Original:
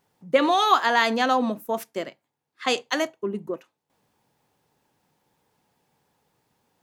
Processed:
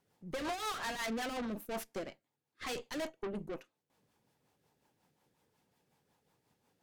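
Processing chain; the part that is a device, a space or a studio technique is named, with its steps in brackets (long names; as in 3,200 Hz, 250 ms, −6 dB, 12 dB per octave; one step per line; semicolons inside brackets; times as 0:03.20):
overdriven rotary cabinet (tube saturation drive 35 dB, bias 0.75; rotating-speaker cabinet horn 5.5 Hz)
level +1 dB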